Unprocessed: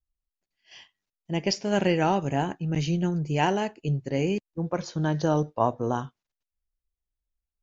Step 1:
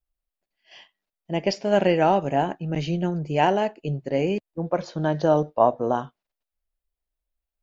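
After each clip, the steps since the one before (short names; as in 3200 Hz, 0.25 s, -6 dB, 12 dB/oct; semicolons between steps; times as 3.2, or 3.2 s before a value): fifteen-band EQ 100 Hz -11 dB, 630 Hz +7 dB, 6300 Hz -8 dB; gain +1.5 dB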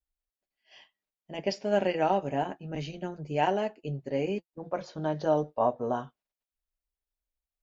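notch comb 170 Hz; gain -5.5 dB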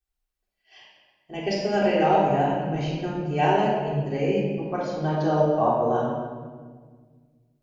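shoebox room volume 1800 m³, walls mixed, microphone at 3.6 m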